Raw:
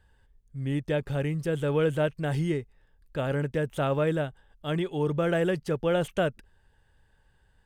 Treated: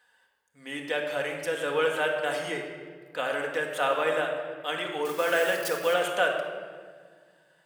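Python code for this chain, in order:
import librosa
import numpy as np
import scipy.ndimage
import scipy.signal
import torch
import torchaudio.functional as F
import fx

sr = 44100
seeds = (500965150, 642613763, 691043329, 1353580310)

y = fx.crossing_spikes(x, sr, level_db=-33.0, at=(5.05, 5.94))
y = scipy.signal.sosfilt(scipy.signal.butter(2, 780.0, 'highpass', fs=sr, output='sos'), y)
y = fx.room_shoebox(y, sr, seeds[0], volume_m3=2300.0, walls='mixed', distance_m=1.9)
y = y * 10.0 ** (5.0 / 20.0)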